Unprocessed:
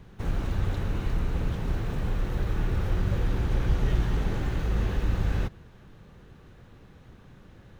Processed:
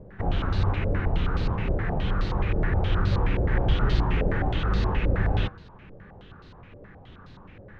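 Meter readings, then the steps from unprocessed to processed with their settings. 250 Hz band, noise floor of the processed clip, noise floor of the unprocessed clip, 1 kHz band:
+3.0 dB, -48 dBFS, -52 dBFS, +7.5 dB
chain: flange 1.3 Hz, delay 9.5 ms, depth 2.2 ms, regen +75%; step-sequenced low-pass 9.5 Hz 560–4400 Hz; trim +7 dB

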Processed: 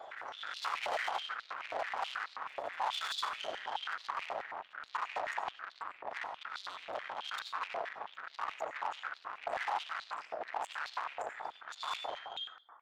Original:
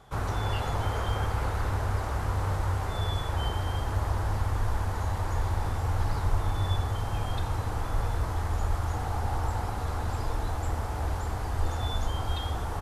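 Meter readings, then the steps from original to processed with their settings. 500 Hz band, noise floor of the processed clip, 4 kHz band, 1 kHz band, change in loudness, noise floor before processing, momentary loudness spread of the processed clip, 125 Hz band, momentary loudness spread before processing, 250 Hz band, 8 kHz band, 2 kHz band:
-6.5 dB, -59 dBFS, -1.5 dB, -4.0 dB, -9.0 dB, -33 dBFS, 7 LU, under -40 dB, 3 LU, -23.5 dB, -10.5 dB, 0.0 dB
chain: fade out at the end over 3.52 s; spectral gate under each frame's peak -30 dB strong; compression, threshold -29 dBFS, peak gain reduction 10 dB; peak limiter -28 dBFS, peak gain reduction 6.5 dB; level rider gain up to 8 dB; flange 0.35 Hz, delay 5.8 ms, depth 7.7 ms, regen +77%; rotary cabinet horn 0.9 Hz; valve stage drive 46 dB, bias 0.35; on a send: reverse echo 451 ms -21.5 dB; on the sum: algorithmic reverb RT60 0.59 s, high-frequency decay 0.45×, pre-delay 50 ms, DRR 8 dB; step-sequenced high-pass 9.3 Hz 650–4100 Hz; trim +10.5 dB

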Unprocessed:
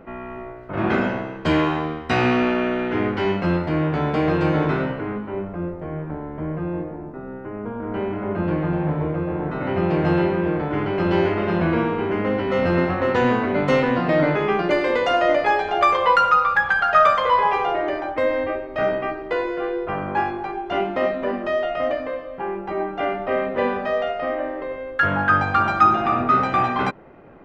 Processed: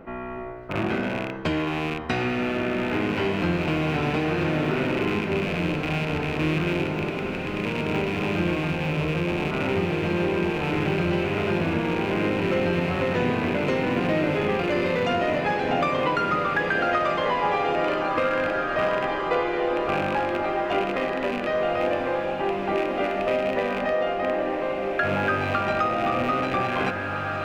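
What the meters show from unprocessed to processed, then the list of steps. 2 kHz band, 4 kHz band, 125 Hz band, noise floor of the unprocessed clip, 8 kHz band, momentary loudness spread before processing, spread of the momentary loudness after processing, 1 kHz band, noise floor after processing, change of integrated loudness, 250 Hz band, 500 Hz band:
-2.5 dB, +0.5 dB, -2.0 dB, -34 dBFS, no reading, 12 LU, 3 LU, -5.5 dB, -29 dBFS, -3.5 dB, -2.5 dB, -2.5 dB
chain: rattle on loud lows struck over -32 dBFS, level -19 dBFS; dynamic bell 1.1 kHz, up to -4 dB, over -30 dBFS, Q 1.8; compression, threshold -22 dBFS, peak gain reduction 9 dB; on a send: echo that smears into a reverb 1940 ms, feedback 45%, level -3.5 dB

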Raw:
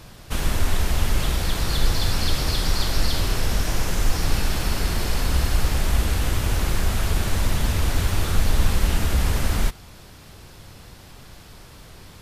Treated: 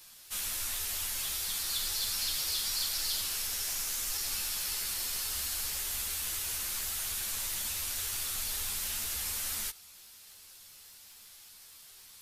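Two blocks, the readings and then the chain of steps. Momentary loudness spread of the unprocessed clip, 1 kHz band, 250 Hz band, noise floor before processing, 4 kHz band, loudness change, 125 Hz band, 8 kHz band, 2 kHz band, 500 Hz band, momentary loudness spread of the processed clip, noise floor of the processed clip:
2 LU, -16.5 dB, -27.0 dB, -45 dBFS, -5.0 dB, -7.5 dB, -29.5 dB, +0.5 dB, -11.0 dB, -22.5 dB, 20 LU, -54 dBFS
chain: crackle 12 per s -46 dBFS; pre-emphasis filter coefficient 0.97; three-phase chorus; trim +3 dB

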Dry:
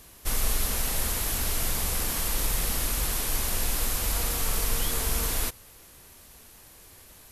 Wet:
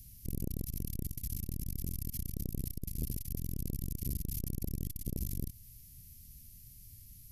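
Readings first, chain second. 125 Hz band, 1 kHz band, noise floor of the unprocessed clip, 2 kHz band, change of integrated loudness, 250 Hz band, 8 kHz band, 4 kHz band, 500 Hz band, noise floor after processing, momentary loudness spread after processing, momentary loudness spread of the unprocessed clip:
-3.0 dB, under -35 dB, -52 dBFS, under -30 dB, -12.5 dB, -2.5 dB, -18.5 dB, -23.0 dB, -15.5 dB, -54 dBFS, 14 LU, 1 LU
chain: elliptic band-stop 130–4600 Hz, stop band 80 dB; compression 1.5:1, threshold -35 dBFS, peak gain reduction 5.5 dB; graphic EQ 250/500/1000/2000/4000/8000 Hz +10/+10/+9/+10/-11/-11 dB; transformer saturation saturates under 250 Hz; trim +3 dB

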